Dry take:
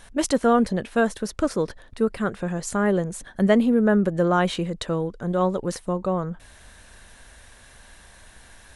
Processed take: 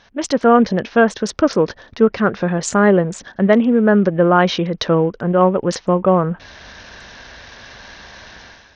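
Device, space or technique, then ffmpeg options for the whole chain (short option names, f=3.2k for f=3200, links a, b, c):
Bluetooth headset: -af "highpass=f=140:p=1,dynaudnorm=f=100:g=7:m=13dB,aresample=16000,aresample=44100" -ar 48000 -c:a sbc -b:a 64k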